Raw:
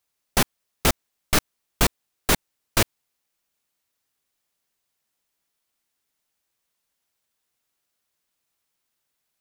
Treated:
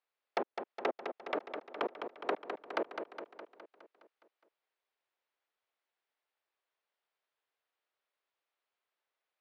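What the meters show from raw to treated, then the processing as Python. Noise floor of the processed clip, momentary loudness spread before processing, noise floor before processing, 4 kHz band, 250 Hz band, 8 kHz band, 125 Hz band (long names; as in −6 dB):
below −85 dBFS, 3 LU, −79 dBFS, −22.5 dB, −15.0 dB, below −40 dB, below −35 dB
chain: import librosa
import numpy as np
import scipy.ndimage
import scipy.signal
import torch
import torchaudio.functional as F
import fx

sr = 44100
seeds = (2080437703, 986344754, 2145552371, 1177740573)

y = fx.env_lowpass_down(x, sr, base_hz=530.0, full_db=-18.5)
y = scipy.signal.sosfilt(scipy.signal.butter(4, 400.0, 'highpass', fs=sr, output='sos'), y)
y = fx.air_absorb(y, sr, metres=320.0)
y = fx.echo_feedback(y, sr, ms=207, feedback_pct=59, wet_db=-7.0)
y = y * 10.0 ** (-3.0 / 20.0)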